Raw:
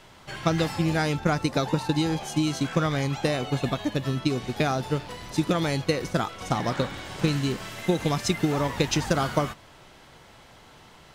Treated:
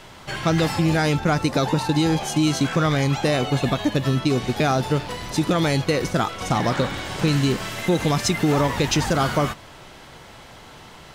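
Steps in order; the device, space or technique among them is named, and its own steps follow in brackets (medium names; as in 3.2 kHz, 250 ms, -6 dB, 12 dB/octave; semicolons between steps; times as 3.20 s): soft clipper into limiter (saturation -13.5 dBFS, distortion -21 dB; peak limiter -19 dBFS, peak gain reduction 5 dB); trim +7.5 dB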